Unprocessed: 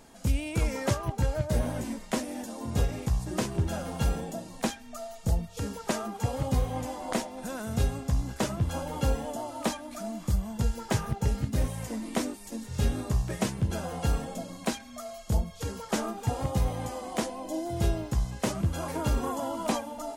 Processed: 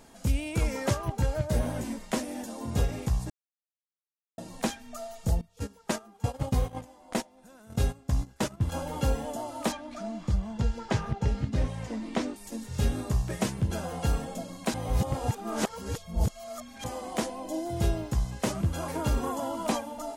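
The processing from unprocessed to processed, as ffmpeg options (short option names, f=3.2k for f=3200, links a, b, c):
-filter_complex "[0:a]asettb=1/sr,asplit=3[a][b][c];[a]atrim=end=5.414[d];[b]atrim=start=5.41:end=8.72,asetpts=PTS-STARTPTS,afade=t=in:d=0.004:c=qsin,afade=t=out:st=3.306:d=0.004:c=qsin,agate=range=-17dB:threshold=-32dB:ratio=16:release=100:detection=peak[e];[c]atrim=start=8.716[f];[d][e]acrossfade=d=0.004:c1=hsin:c2=qsin[g];[g][f]acrossfade=d=0.004:c1=qsin:c2=hsin,asettb=1/sr,asplit=3[h][i][j];[h]atrim=end=9.724[k];[i]atrim=start=9.72:end=12.36,asetpts=PTS-STARTPTS,afade=t=in:d=0.004:c=qsin,afade=t=out:st=2.636:d=0.004:c=qsin,lowpass=5k[l];[j]atrim=start=12.356[m];[k][l]acrossfade=d=0.004:c1=hsin:c2=qsin[n];[n][m]acrossfade=d=0.004:c1=qsin:c2=hsin,asplit=5[o][p][q][r][s];[o]atrim=end=3.3,asetpts=PTS-STARTPTS,afade=t=out:st=3.296:d=0.004:c=hsin[t];[p]atrim=start=3.3:end=4.38,asetpts=PTS-STARTPTS,volume=0[u];[q]atrim=start=4.38:end=14.742,asetpts=PTS-STARTPTS,afade=t=in:d=0.004:c=hsin[v];[r]atrim=start=14.738:end=16.842,asetpts=PTS-STARTPTS,areverse[w];[s]atrim=start=16.838[x];[t][u][v]concat=n=3:v=0:a=1[y];[y][w]acrossfade=d=0.004:c1=hsin:c2=hsin[z];[z][x]acrossfade=d=0.004:c1=hsin:c2=hsin"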